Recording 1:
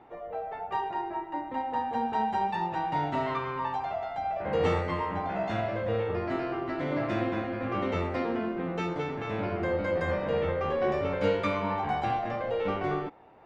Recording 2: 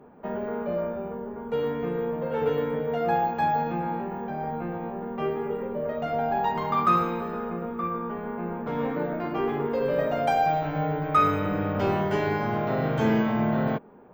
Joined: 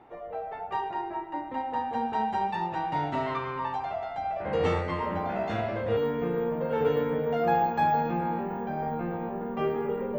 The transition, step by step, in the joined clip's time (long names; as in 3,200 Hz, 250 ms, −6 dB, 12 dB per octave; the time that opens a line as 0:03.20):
recording 1
0:05.02: mix in recording 2 from 0:00.63 0.95 s −7 dB
0:05.97: continue with recording 2 from 0:01.58